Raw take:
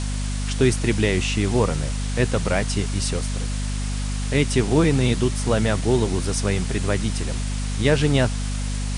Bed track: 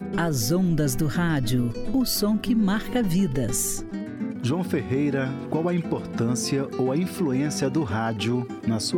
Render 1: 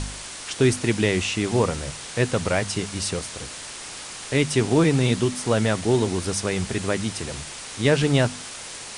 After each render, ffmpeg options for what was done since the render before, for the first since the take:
-af "bandreject=f=50:t=h:w=4,bandreject=f=100:t=h:w=4,bandreject=f=150:t=h:w=4,bandreject=f=200:t=h:w=4,bandreject=f=250:t=h:w=4"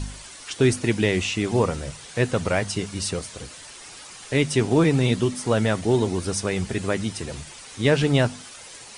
-af "afftdn=nr=9:nf=-37"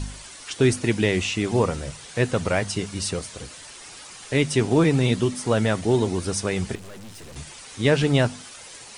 -filter_complex "[0:a]asettb=1/sr,asplit=3[a][b][c];[a]atrim=end=6.754[d];[b]atrim=start=6.75:end=7.36,asetpts=PTS-STARTPTS,afade=t=in:d=0.004:c=qsin,afade=t=out:st=0.606:d=0.004:c=qsin,aeval=exprs='(tanh(100*val(0)+0.65)-tanh(0.65))/100':c=same[e];[c]atrim=start=7.356[f];[d][e]acrossfade=d=0.004:c1=hsin:c2=qsin[g];[g][f]acrossfade=d=0.004:c1=qsin:c2=hsin"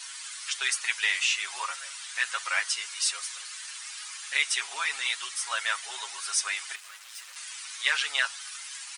-af "highpass=f=1.2k:w=0.5412,highpass=f=1.2k:w=1.3066,aecho=1:1:7.3:0.8"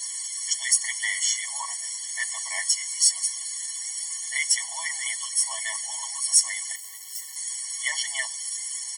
-af "aexciter=amount=4.8:drive=5.3:freq=5.2k,afftfilt=real='re*eq(mod(floor(b*sr/1024/580),2),1)':imag='im*eq(mod(floor(b*sr/1024/580),2),1)':win_size=1024:overlap=0.75"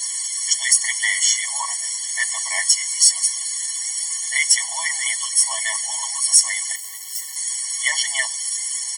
-af "volume=7dB,alimiter=limit=-1dB:level=0:latency=1"

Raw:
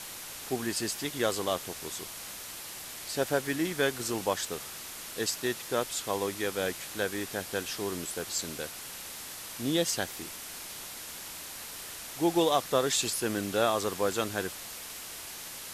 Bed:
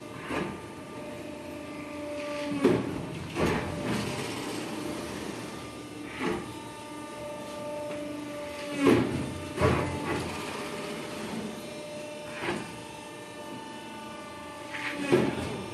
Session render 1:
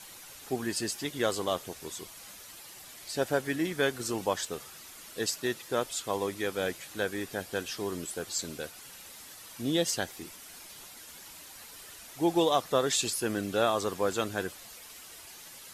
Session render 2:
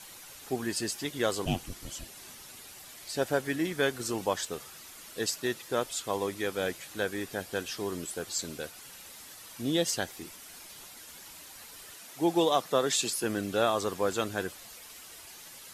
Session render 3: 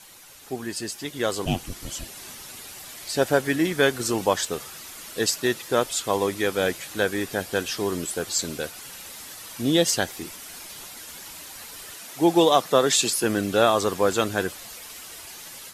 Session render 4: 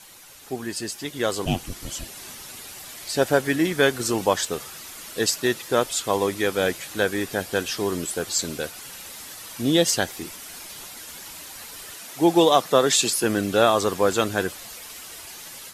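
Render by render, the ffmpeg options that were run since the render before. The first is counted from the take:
-af "afftdn=nr=9:nf=-43"
-filter_complex "[0:a]asettb=1/sr,asplit=3[a][b][c];[a]atrim=end=1.454[d];[b]atrim=start=1.45:end=2.73,asetpts=PTS-STARTPTS,afade=t=in:d=0.004:c=qsin,afade=t=out:st=1.276:d=0.004:c=qsin,afreqshift=-430[e];[c]atrim=start=2.726[f];[d][e]acrossfade=d=0.004:c1=hsin:c2=qsin[g];[g][f]acrossfade=d=0.004:c1=qsin:c2=hsin,asettb=1/sr,asplit=3[h][i][j];[h]atrim=end=11.954[k];[i]atrim=start=11.95:end=13.24,asetpts=PTS-STARTPTS,afade=t=in:d=0.004:c=qsin,afade=t=out:st=1.286:d=0.004:c=qsin,highpass=f=130:w=0.5412,highpass=f=130:w=1.3066[l];[j]atrim=start=13.236[m];[k][l]acrossfade=d=0.004:c1=hsin:c2=qsin[n];[n][m]acrossfade=d=0.004:c1=qsin:c2=hsin"
-af "dynaudnorm=f=980:g=3:m=8dB"
-af "volume=1dB"

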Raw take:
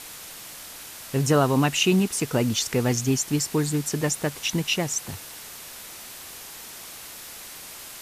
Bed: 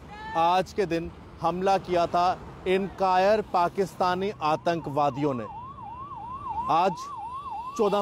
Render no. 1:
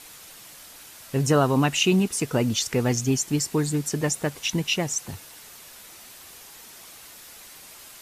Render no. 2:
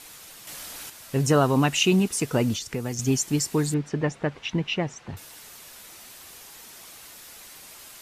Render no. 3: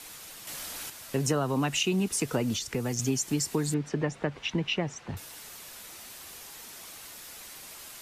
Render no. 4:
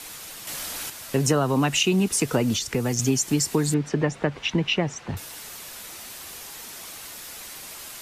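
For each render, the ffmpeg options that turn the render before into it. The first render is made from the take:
-af "afftdn=nr=6:nf=-41"
-filter_complex "[0:a]asettb=1/sr,asplit=3[a][b][c];[a]atrim=end=0.474[d];[b]atrim=start=0.47:end=0.9,asetpts=PTS-STARTPTS,afade=t=in:d=0.004:c=qsin,afade=t=out:st=0.426:d=0.004:c=qsin,acontrast=65[e];[c]atrim=start=0.896[f];[d][e]acrossfade=d=0.004:c1=hsin:c2=qsin[g];[g][f]acrossfade=d=0.004:c1=qsin:c2=hsin,asettb=1/sr,asplit=3[h][i][j];[h]atrim=end=2.544[k];[i]atrim=start=2.54:end=2.99,asetpts=PTS-STARTPTS,afade=t=in:d=0.004:c=qsin,afade=t=out:st=0.446:d=0.004:c=qsin,acrossover=split=330|6300[l][m][n];[l]acompressor=threshold=-30dB:ratio=4[o];[m]acompressor=threshold=-34dB:ratio=4[p];[n]acompressor=threshold=-42dB:ratio=4[q];[o][p][q]amix=inputs=3:normalize=0[r];[j]atrim=start=2.986[s];[k][r]acrossfade=d=0.004:c1=hsin:c2=qsin[t];[t][s]acrossfade=d=0.004:c1=qsin:c2=hsin,asettb=1/sr,asplit=3[u][v][w];[u]atrim=end=3.744[x];[v]atrim=start=3.74:end=5.17,asetpts=PTS-STARTPTS,afade=t=in:d=0.004:c=qsin,afade=t=out:st=1.426:d=0.004:c=qsin,lowpass=2.6k[y];[w]atrim=start=5.166[z];[x][y]acrossfade=d=0.004:c1=hsin:c2=qsin[aa];[aa][z]acrossfade=d=0.004:c1=qsin:c2=hsin"
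-filter_complex "[0:a]acrossover=split=180|890[a][b][c];[a]alimiter=level_in=8dB:limit=-24dB:level=0:latency=1,volume=-8dB[d];[d][b][c]amix=inputs=3:normalize=0,acrossover=split=140[e][f];[f]acompressor=threshold=-25dB:ratio=6[g];[e][g]amix=inputs=2:normalize=0"
-af "volume=6dB"

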